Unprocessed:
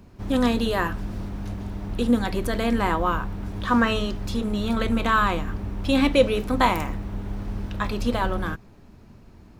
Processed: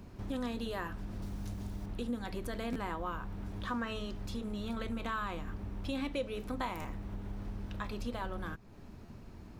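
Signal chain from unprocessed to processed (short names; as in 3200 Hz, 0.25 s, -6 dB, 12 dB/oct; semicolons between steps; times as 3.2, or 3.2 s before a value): 1.22–1.86 tone controls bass +3 dB, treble +10 dB; compressor 2.5:1, threshold -40 dBFS, peak gain reduction 18.5 dB; stuck buffer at 2.72/6.81/9.05, samples 512, times 2; gain -1.5 dB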